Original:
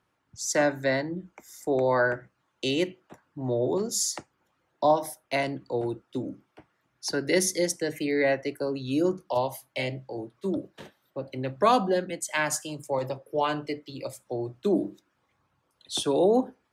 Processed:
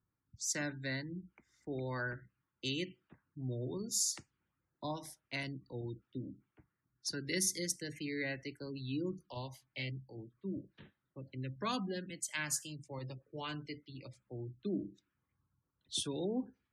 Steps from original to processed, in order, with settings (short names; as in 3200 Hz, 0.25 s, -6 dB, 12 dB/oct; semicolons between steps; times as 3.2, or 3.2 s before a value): passive tone stack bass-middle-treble 6-0-2; low-pass opened by the level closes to 1200 Hz, open at -46 dBFS; spectral gate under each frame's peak -30 dB strong; gain +9 dB